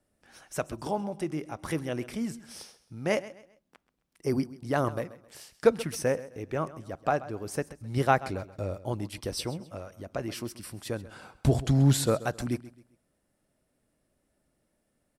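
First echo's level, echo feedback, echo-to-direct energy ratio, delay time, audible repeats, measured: -17.0 dB, 32%, -16.5 dB, 132 ms, 2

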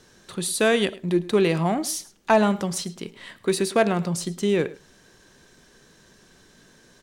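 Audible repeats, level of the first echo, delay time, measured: 1, -19.5 dB, 106 ms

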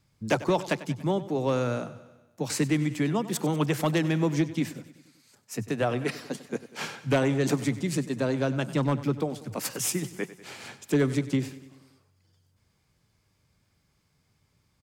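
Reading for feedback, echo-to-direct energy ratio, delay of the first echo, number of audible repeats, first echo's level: 59%, -14.0 dB, 96 ms, 5, -16.0 dB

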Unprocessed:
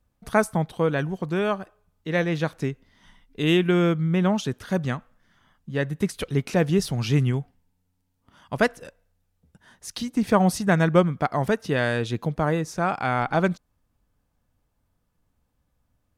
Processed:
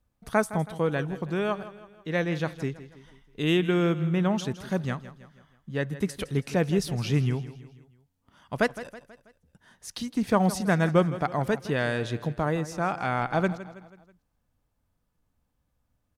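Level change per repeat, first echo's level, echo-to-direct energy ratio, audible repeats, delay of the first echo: -6.5 dB, -15.0 dB, -14.0 dB, 4, 162 ms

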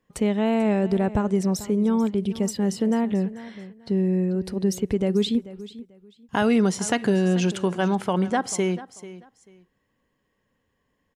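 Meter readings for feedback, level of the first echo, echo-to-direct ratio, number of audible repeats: 22%, -16.5 dB, -16.5 dB, 2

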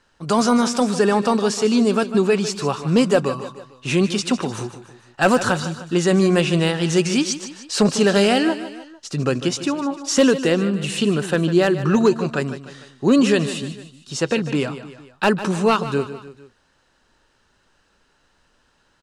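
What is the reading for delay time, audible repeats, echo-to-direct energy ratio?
151 ms, 3, -11.5 dB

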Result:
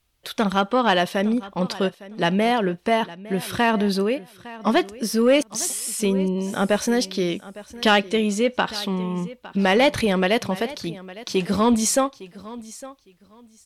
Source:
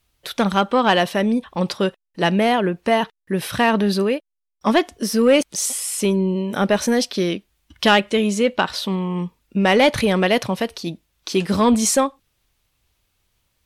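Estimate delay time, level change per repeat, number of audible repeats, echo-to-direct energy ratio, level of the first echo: 858 ms, -13.5 dB, 2, -18.0 dB, -18.0 dB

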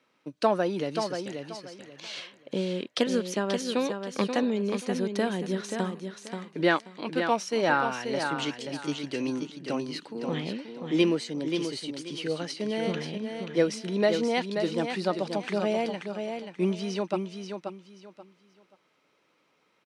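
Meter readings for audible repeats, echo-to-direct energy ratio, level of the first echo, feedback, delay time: 3, -6.0 dB, -6.5 dB, 25%, 532 ms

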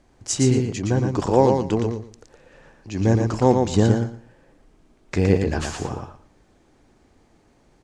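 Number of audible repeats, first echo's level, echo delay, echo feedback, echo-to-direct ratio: 3, -4.5 dB, 116 ms, 19%, -4.5 dB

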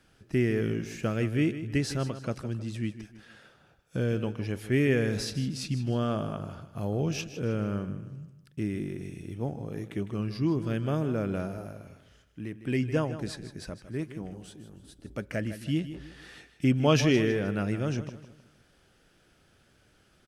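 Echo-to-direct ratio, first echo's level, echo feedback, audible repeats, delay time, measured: -12.0 dB, -12.5 dB, 38%, 3, 156 ms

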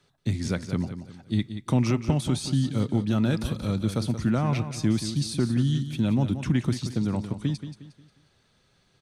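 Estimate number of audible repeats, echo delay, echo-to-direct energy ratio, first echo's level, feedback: 3, 179 ms, -10.0 dB, -10.5 dB, 37%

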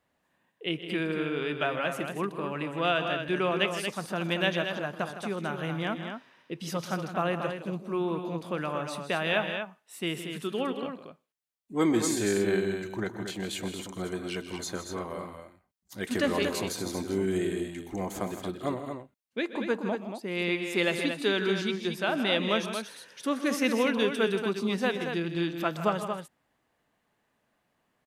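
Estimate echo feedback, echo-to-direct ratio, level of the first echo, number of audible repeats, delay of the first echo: no regular repeats, -5.5 dB, -16.0 dB, 3, 125 ms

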